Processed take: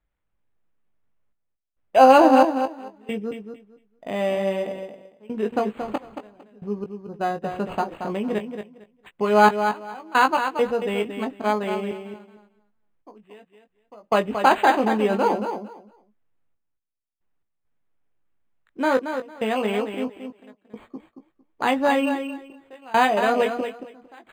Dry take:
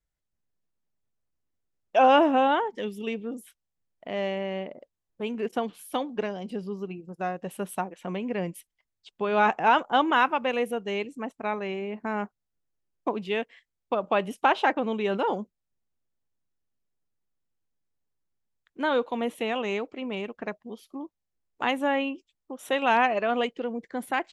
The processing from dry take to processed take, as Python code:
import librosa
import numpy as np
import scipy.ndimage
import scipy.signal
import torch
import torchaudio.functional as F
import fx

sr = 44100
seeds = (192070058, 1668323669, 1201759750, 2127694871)

y = fx.step_gate(x, sr, bpm=68, pattern='xxxxxx..xxx...x.', floor_db=-24.0, edge_ms=4.5)
y = fx.doubler(y, sr, ms=19.0, db=-6.5)
y = fx.echo_feedback(y, sr, ms=227, feedback_pct=19, wet_db=-8)
y = np.interp(np.arange(len(y)), np.arange(len(y))[::8], y[::8])
y = F.gain(torch.from_numpy(y), 5.0).numpy()